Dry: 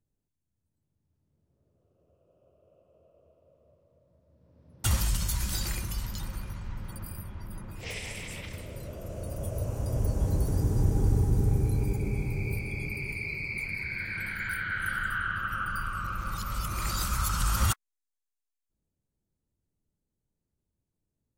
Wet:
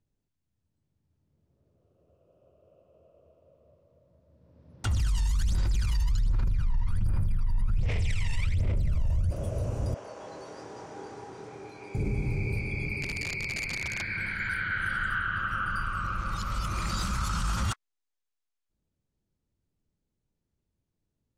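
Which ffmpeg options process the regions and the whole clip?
-filter_complex "[0:a]asettb=1/sr,asplit=3[s0][s1][s2];[s0]atrim=end=4.854[s3];[s1]atrim=start=4.85:end=9.31,asetpts=PTS-STARTPTS,afade=t=in:d=0.004:c=qsin,afade=t=out:st=4.456:d=0.004:c=qsin,aecho=1:1:81|162|243|324|405|486|567:0.596|0.31|0.161|0.0838|0.0436|0.0226|0.0118,atrim=end_sample=196686,asubboost=boost=5.5:cutoff=130,aphaser=in_gain=1:out_gain=1:delay=1.1:decay=0.78:speed=1.3:type=sinusoidal[s4];[s2]atrim=start=9.306[s5];[s3][s4]acrossfade=d=0.004:c1=hsin:c2=qsin[s6];[s6][s5]acrossfade=d=0.004:c1=qsin:c2=hsin,asettb=1/sr,asplit=3[s7][s8][s9];[s7]atrim=end=9.944[s10];[s8]atrim=start=9.94:end=11.95,asetpts=PTS-STARTPTS,afade=t=in:d=0.004:c=qsin,afade=t=out:st=2.006:d=0.004:c=qsin,highpass=710,lowpass=6000,highshelf=f=3900:g=-5.5,asplit=2[s11][s12];[s12]adelay=26,volume=0.631[s13];[s11][s13]amix=inputs=2:normalize=0,atrim=end_sample=88641[s14];[s9]atrim=start=11.946[s15];[s10][s14]acrossfade=d=0.004:c1=hsin:c2=qsin[s16];[s16][s15]acrossfade=d=0.004:c1=qsin:c2=hsin,asettb=1/sr,asplit=3[s17][s18][s19];[s17]atrim=end=13.024[s20];[s18]atrim=start=13.02:end=14.02,asetpts=PTS-STARTPTS,afade=t=in:d=0.004:c=qsin,afade=t=out:st=0.996:d=0.004:c=qsin,equalizer=f=14000:t=o:w=0.42:g=3.5,aeval=exprs='(mod(22.4*val(0)+1,2)-1)/22.4':c=same[s21];[s19]atrim=start=14.016[s22];[s20][s21]acrossfade=d=0.004:c1=hsin:c2=qsin[s23];[s23][s22]acrossfade=d=0.004:c1=qsin:c2=hsin,asettb=1/sr,asplit=3[s24][s25][s26];[s24]atrim=end=16.794[s27];[s25]atrim=start=16.79:end=17.71,asetpts=PTS-STARTPTS,afade=t=in:d=0.004:c=qsin,afade=t=out:st=0.916:d=0.004:c=qsin,equalizer=f=190:w=2:g=6,aeval=exprs='sgn(val(0))*max(abs(val(0))-0.00398,0)':c=same[s28];[s26]atrim=start=17.706[s29];[s27][s28]acrossfade=d=0.004:c1=hsin:c2=qsin[s30];[s30][s29]acrossfade=d=0.004:c1=qsin:c2=hsin,lowpass=6600,alimiter=limit=0.0708:level=0:latency=1:release=20,volume=1.26"

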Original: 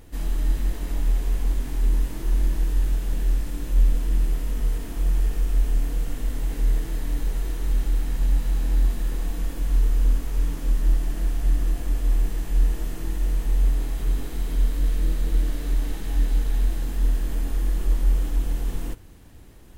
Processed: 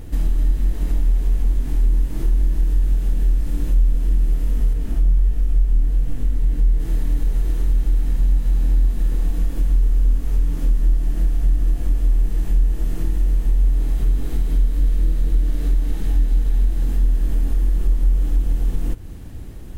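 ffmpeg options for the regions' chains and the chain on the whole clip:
-filter_complex "[0:a]asettb=1/sr,asplit=3[s0][s1][s2];[s0]atrim=end=4.734[s3];[s1]atrim=start=4.73:end=6.8,asetpts=PTS-STARTPTS,afade=t=in:d=0.004:c=qsin,afade=t=out:st=2.066:d=0.004:c=qsin,bass=f=250:g=3,treble=f=4000:g=-2,flanger=delay=16.5:depth=7.9:speed=1.4[s4];[s2]atrim=start=6.796[s5];[s3][s4]acrossfade=d=0.004:c1=hsin:c2=qsin[s6];[s6][s5]acrossfade=d=0.004:c1=qsin:c2=hsin,lowshelf=f=350:g=9.5,bandreject=f=1000:w=25,acompressor=threshold=0.0708:ratio=2.5,volume=1.78"

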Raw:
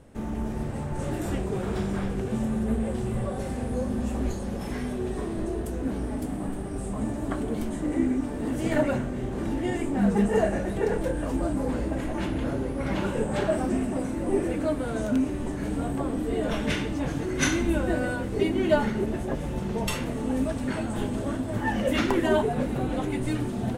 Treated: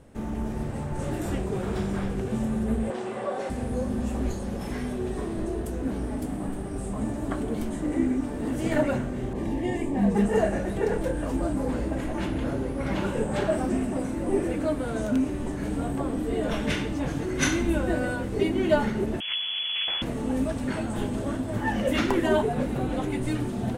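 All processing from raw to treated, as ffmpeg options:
-filter_complex "[0:a]asettb=1/sr,asplit=3[s0][s1][s2];[s0]atrim=end=2.904[s3];[s1]atrim=start=2.9:end=3.5,asetpts=PTS-STARTPTS,afade=t=in:d=0.004:c=qsin,afade=t=out:st=0.596:d=0.004:c=qsin,highshelf=f=3500:g=-7.5,acontrast=56,highpass=470,lowpass=7600[s4];[s2]atrim=start=3.496[s5];[s3][s4]acrossfade=d=0.004:c1=hsin:c2=qsin[s6];[s6][s5]acrossfade=d=0.004:c1=qsin:c2=hsin,asettb=1/sr,asplit=3[s7][s8][s9];[s7]atrim=end=9.334[s10];[s8]atrim=start=9.33:end=10.15,asetpts=PTS-STARTPTS,afade=t=in:d=0.004:c=qsin,afade=t=out:st=0.816:d=0.004:c=qsin,asuperstop=centerf=1400:order=4:qfactor=3.4,adynamicequalizer=threshold=0.00501:dfrequency=2800:dqfactor=0.7:tfrequency=2800:tqfactor=0.7:attack=5:release=100:ratio=0.375:range=2:mode=cutabove:tftype=highshelf[s11];[s9]atrim=start=10.146[s12];[s10][s11]acrossfade=d=0.004:c1=hsin:c2=qsin[s13];[s13][s12]acrossfade=d=0.004:c1=qsin:c2=hsin,asettb=1/sr,asplit=3[s14][s15][s16];[s14]atrim=end=19.204[s17];[s15]atrim=start=19.2:end=20.02,asetpts=PTS-STARTPTS,afade=t=in:d=0.004:c=qsin,afade=t=out:st=0.816:d=0.004:c=qsin,aeval=exprs='abs(val(0))':c=same,lowpass=f=2900:t=q:w=0.5098,lowpass=f=2900:t=q:w=0.6013,lowpass=f=2900:t=q:w=0.9,lowpass=f=2900:t=q:w=2.563,afreqshift=-3400[s18];[s16]atrim=start=20.016[s19];[s17][s18]acrossfade=d=0.004:c1=hsin:c2=qsin[s20];[s20][s19]acrossfade=d=0.004:c1=qsin:c2=hsin"

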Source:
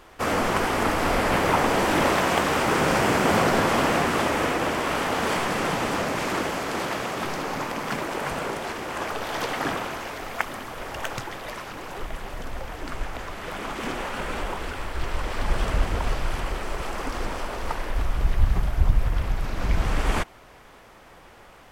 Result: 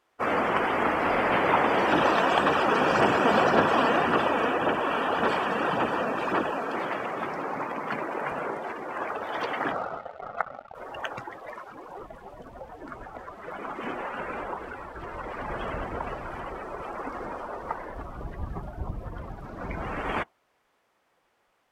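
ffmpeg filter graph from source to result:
-filter_complex "[0:a]asettb=1/sr,asplit=3[s0][s1][s2];[s0]atrim=end=1.924[s3];[s1]atrim=start=1.92:end=6.75,asetpts=PTS-STARTPTS,afade=t=in:d=0.004:c=qsin,afade=t=out:st=4.826:d=0.004:c=qsin,bandreject=f=2100:w=6.7,aphaser=in_gain=1:out_gain=1:delay=4.5:decay=0.37:speed=1.8:type=sinusoidal[s4];[s2]atrim=start=6.746[s5];[s3][s4]acrossfade=d=0.004:c1=hsin:c2=qsin[s6];[s6][s5]acrossfade=d=0.004:c1=qsin:c2=hsin,asettb=1/sr,asplit=3[s7][s8][s9];[s7]atrim=end=9.724[s10];[s8]atrim=start=9.72:end=10.75,asetpts=PTS-STARTPTS,afade=t=in:d=0.004:c=qsin,afade=t=out:st=1.026:d=0.004:c=qsin,lowpass=f=1500:w=0.5412,lowpass=f=1500:w=1.3066,aecho=1:1:1.5:0.5,atrim=end_sample=45423,acrusher=bits=4:mix=0:aa=0.5[s11];[s9]atrim=start=10.746[s12];[s10][s11]acrossfade=d=0.004:c1=hsin:c2=qsin[s13];[s13][s12]acrossfade=d=0.004:c1=qsin:c2=hsin,afftdn=nr=20:nf=-32,highpass=f=300:p=1"

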